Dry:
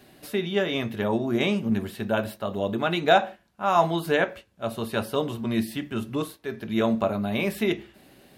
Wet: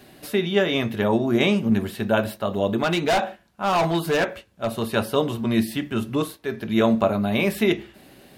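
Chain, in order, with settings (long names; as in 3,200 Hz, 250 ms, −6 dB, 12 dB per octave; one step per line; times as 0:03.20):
0:02.83–0:04.95: gain into a clipping stage and back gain 21.5 dB
level +4.5 dB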